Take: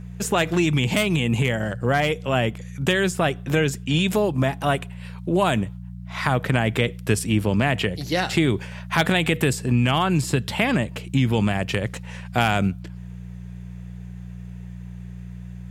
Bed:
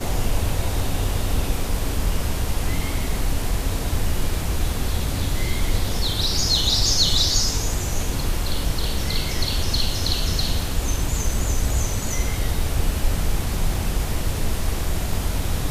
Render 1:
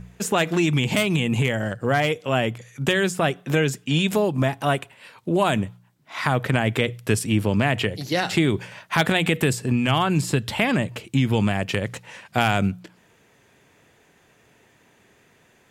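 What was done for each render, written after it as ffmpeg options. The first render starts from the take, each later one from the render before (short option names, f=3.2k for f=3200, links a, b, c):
-af "bandreject=f=60:t=h:w=4,bandreject=f=120:t=h:w=4,bandreject=f=180:t=h:w=4"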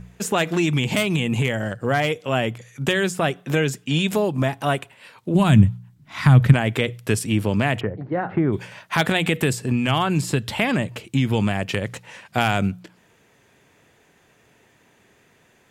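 -filter_complex "[0:a]asplit=3[a][b][c];[a]afade=t=out:st=5.34:d=0.02[d];[b]asubboost=boost=10:cutoff=160,afade=t=in:st=5.34:d=0.02,afade=t=out:st=6.52:d=0.02[e];[c]afade=t=in:st=6.52:d=0.02[f];[d][e][f]amix=inputs=3:normalize=0,asplit=3[g][h][i];[g]afade=t=out:st=7.79:d=0.02[j];[h]lowpass=f=1.5k:w=0.5412,lowpass=f=1.5k:w=1.3066,afade=t=in:st=7.79:d=0.02,afade=t=out:st=8.52:d=0.02[k];[i]afade=t=in:st=8.52:d=0.02[l];[j][k][l]amix=inputs=3:normalize=0"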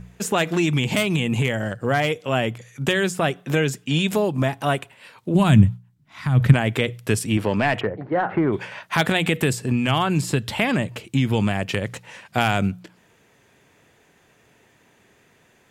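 -filter_complex "[0:a]asettb=1/sr,asplit=3[a][b][c];[a]atrim=end=7.374[d];[b]atrim=start=7.37:end=8.83,asetpts=PTS-STARTPTS,afade=t=in:d=0.004:c=qsin,afade=t=out:st=1.456:d=0.004:c=qsin,asplit=2[e][f];[f]highpass=f=720:p=1,volume=13dB,asoftclip=type=tanh:threshold=-8.5dB[g];[e][g]amix=inputs=2:normalize=0,lowpass=f=2k:p=1,volume=-6dB[h];[c]atrim=start=8.826[i];[d][h]acrossfade=d=0.004:c1=hsin:c2=qsin[j];[j][i]acrossfade=d=0.004:c1=qsin:c2=hsin,asplit=3[k][l][m];[k]atrim=end=5.85,asetpts=PTS-STARTPTS,afade=t=out:st=5.73:d=0.12:c=qua:silence=0.354813[n];[l]atrim=start=5.85:end=6.29,asetpts=PTS-STARTPTS,volume=-9dB[o];[m]atrim=start=6.29,asetpts=PTS-STARTPTS,afade=t=in:d=0.12:c=qua:silence=0.354813[p];[n][o][p]concat=n=3:v=0:a=1"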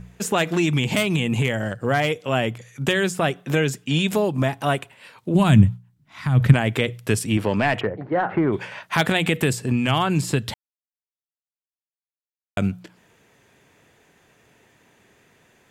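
-filter_complex "[0:a]asplit=3[a][b][c];[a]atrim=end=10.54,asetpts=PTS-STARTPTS,afade=t=out:st=10.536:d=0.004:c=hsin[d];[b]atrim=start=10.54:end=12.57,asetpts=PTS-STARTPTS,volume=0[e];[c]atrim=start=12.57,asetpts=PTS-STARTPTS,afade=t=in:d=0.004:c=hsin[f];[d][e][f]concat=n=3:v=0:a=1"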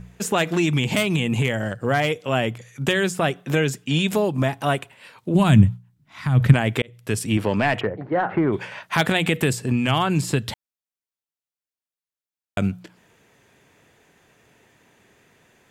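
-filter_complex "[0:a]asplit=2[a][b];[a]atrim=end=6.82,asetpts=PTS-STARTPTS,afade=t=out:st=6.816:d=0.004:c=hsin[c];[b]atrim=start=6.82,asetpts=PTS-STARTPTS,afade=t=in:d=0.44[d];[c][d]concat=n=2:v=0:a=1"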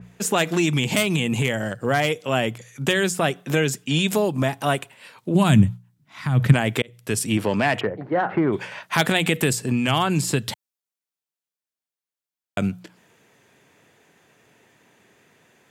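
-af "highpass=110,adynamicequalizer=threshold=0.0141:dfrequency=4200:dqfactor=0.7:tfrequency=4200:tqfactor=0.7:attack=5:release=100:ratio=0.375:range=2.5:mode=boostabove:tftype=highshelf"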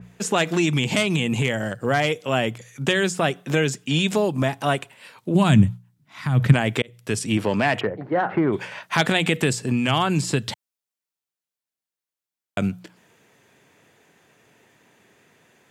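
-filter_complex "[0:a]acrossover=split=8800[a][b];[b]acompressor=threshold=-52dB:ratio=4:attack=1:release=60[c];[a][c]amix=inputs=2:normalize=0"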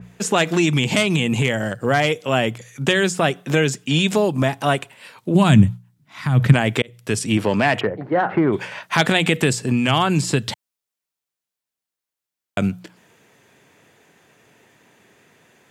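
-af "volume=3dB,alimiter=limit=-1dB:level=0:latency=1"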